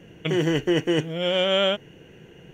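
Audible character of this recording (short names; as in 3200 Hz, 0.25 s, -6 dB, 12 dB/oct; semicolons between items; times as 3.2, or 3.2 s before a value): noise floor -49 dBFS; spectral tilt -3.5 dB/oct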